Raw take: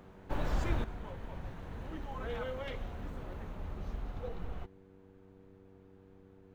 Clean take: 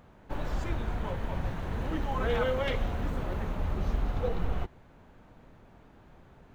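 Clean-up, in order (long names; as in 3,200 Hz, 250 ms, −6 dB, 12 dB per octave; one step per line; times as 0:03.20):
hum removal 95.7 Hz, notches 5
level 0 dB, from 0:00.84 +10.5 dB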